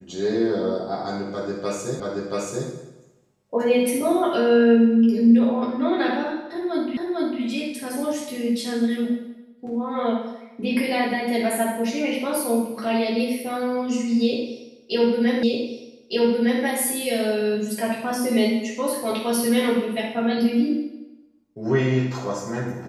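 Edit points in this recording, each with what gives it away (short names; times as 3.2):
2 repeat of the last 0.68 s
6.97 repeat of the last 0.45 s
15.43 repeat of the last 1.21 s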